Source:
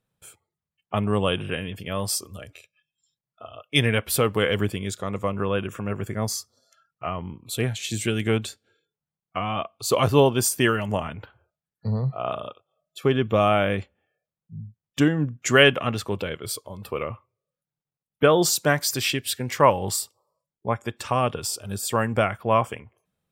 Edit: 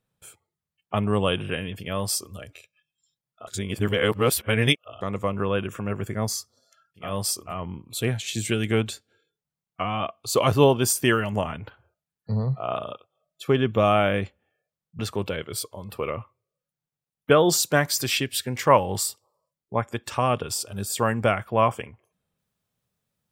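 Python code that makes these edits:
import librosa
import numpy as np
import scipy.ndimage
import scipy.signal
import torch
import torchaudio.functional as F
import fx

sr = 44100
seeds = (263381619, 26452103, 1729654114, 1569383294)

y = fx.edit(x, sr, fx.duplicate(start_s=1.9, length_s=0.44, to_s=7.06, crossfade_s=0.24),
    fx.reverse_span(start_s=3.47, length_s=1.54),
    fx.cut(start_s=14.55, length_s=1.37), tone=tone)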